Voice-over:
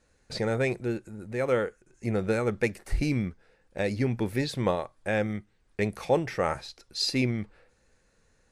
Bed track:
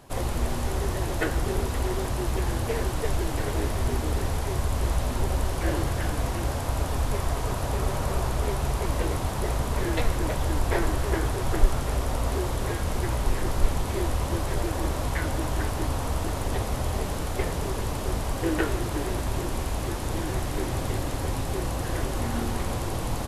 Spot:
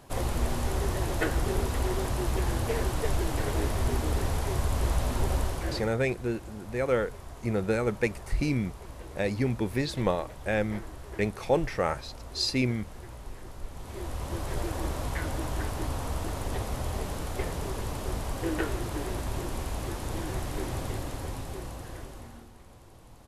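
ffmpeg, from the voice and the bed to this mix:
ffmpeg -i stem1.wav -i stem2.wav -filter_complex "[0:a]adelay=5400,volume=-0.5dB[link_01];[1:a]volume=11dB,afade=type=out:start_time=5.36:duration=0.59:silence=0.16788,afade=type=in:start_time=13.7:duration=0.89:silence=0.237137,afade=type=out:start_time=20.74:duration=1.75:silence=0.112202[link_02];[link_01][link_02]amix=inputs=2:normalize=0" out.wav

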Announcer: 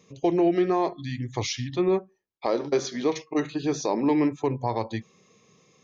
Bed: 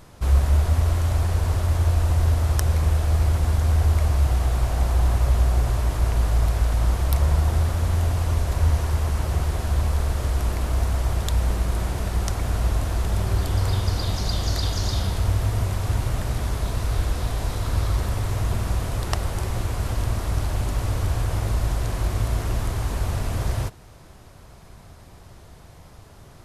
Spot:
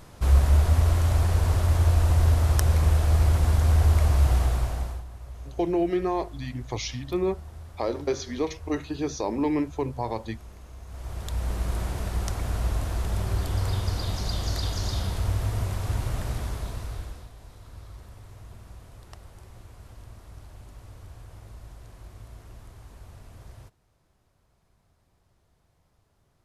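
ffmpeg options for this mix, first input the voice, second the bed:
ffmpeg -i stem1.wav -i stem2.wav -filter_complex "[0:a]adelay=5350,volume=-3dB[link_01];[1:a]volume=16.5dB,afade=type=out:start_time=4.37:duration=0.67:silence=0.0891251,afade=type=in:start_time=10.85:duration=0.84:silence=0.141254,afade=type=out:start_time=16.29:duration=1.01:silence=0.141254[link_02];[link_01][link_02]amix=inputs=2:normalize=0" out.wav

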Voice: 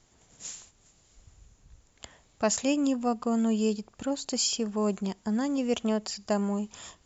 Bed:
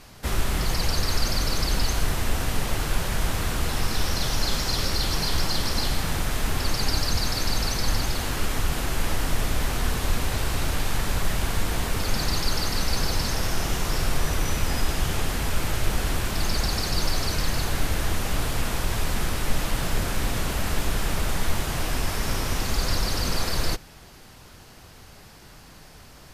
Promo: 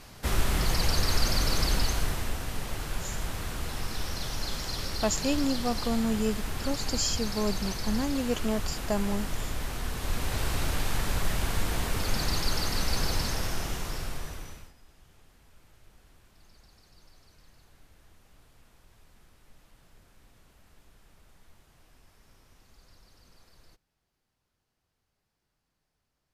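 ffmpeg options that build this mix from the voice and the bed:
ffmpeg -i stem1.wav -i stem2.wav -filter_complex "[0:a]adelay=2600,volume=-2dB[link_01];[1:a]volume=3.5dB,afade=type=out:start_time=1.64:duration=0.76:silence=0.446684,afade=type=in:start_time=9.92:duration=0.52:silence=0.562341,afade=type=out:start_time=13.15:duration=1.58:silence=0.0316228[link_02];[link_01][link_02]amix=inputs=2:normalize=0" out.wav

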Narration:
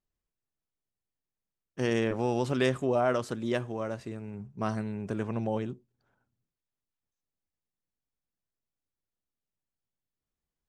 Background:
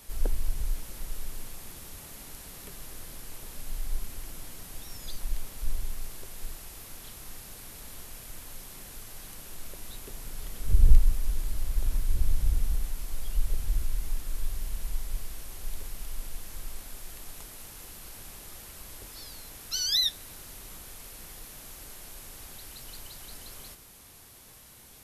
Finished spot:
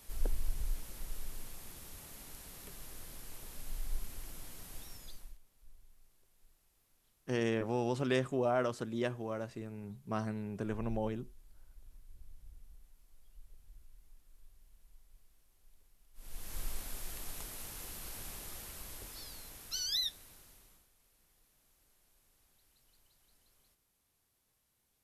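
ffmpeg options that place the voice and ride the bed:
ffmpeg -i stem1.wav -i stem2.wav -filter_complex "[0:a]adelay=5500,volume=-5dB[link_01];[1:a]volume=22.5dB,afade=type=out:start_time=4.79:duration=0.59:silence=0.0707946,afade=type=in:start_time=16.14:duration=0.46:silence=0.0375837,afade=type=out:start_time=18.3:duration=2.59:silence=0.0530884[link_02];[link_01][link_02]amix=inputs=2:normalize=0" out.wav

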